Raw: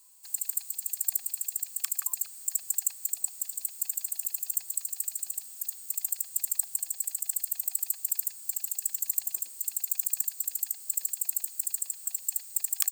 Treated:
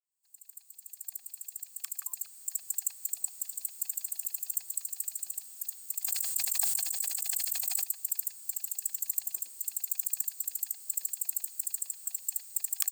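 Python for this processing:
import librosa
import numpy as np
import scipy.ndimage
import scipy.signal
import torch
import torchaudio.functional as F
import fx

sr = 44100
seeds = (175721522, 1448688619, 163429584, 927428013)

y = fx.fade_in_head(x, sr, length_s=3.18)
y = fx.sustainer(y, sr, db_per_s=21.0, at=(6.02, 7.83), fade=0.02)
y = y * 10.0 ** (-3.0 / 20.0)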